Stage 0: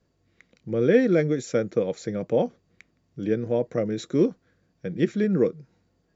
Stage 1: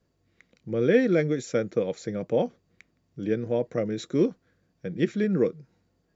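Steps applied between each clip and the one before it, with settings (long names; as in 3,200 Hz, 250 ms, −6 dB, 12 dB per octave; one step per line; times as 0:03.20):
dynamic equaliser 2,800 Hz, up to +3 dB, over −40 dBFS, Q 0.78
level −2 dB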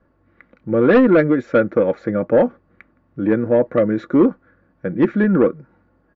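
low-pass with resonance 1,400 Hz, resonance Q 2.1
comb filter 3.5 ms, depth 42%
in parallel at −7 dB: sine wavefolder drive 8 dB, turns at −7.5 dBFS
on the sum: level +1.5 dB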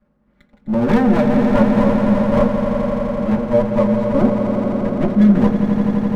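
lower of the sound and its delayed copy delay 4.9 ms
echo that builds up and dies away 85 ms, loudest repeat 5, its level −9 dB
on a send at −4.5 dB: convolution reverb RT60 0.20 s, pre-delay 3 ms
on the sum: level −6.5 dB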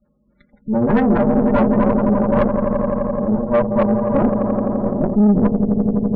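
gate on every frequency bin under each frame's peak −20 dB strong
dynamic equaliser 1,600 Hz, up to +6 dB, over −36 dBFS, Q 1.1
tube saturation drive 12 dB, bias 0.7
level +3.5 dB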